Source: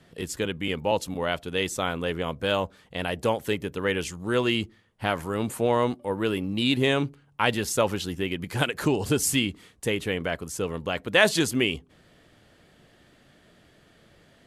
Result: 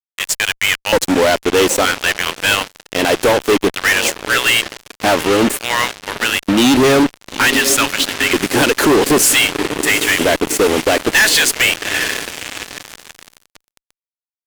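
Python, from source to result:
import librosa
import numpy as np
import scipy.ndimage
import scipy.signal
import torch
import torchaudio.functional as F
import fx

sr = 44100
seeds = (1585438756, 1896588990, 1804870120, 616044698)

y = fx.filter_lfo_highpass(x, sr, shape='square', hz=0.54, low_hz=300.0, high_hz=1800.0, q=1.9)
y = fx.echo_diffused(y, sr, ms=804, feedback_pct=60, wet_db=-15.0)
y = fx.fuzz(y, sr, gain_db=34.0, gate_db=-35.0)
y = y * librosa.db_to_amplitude(4.5)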